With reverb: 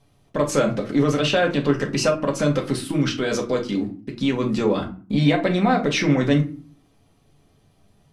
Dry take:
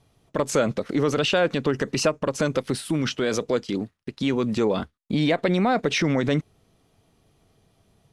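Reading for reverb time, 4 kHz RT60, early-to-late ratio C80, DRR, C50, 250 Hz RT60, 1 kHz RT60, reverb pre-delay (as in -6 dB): 0.40 s, 0.25 s, 18.0 dB, 0.5 dB, 12.0 dB, 0.60 s, 0.40 s, 4 ms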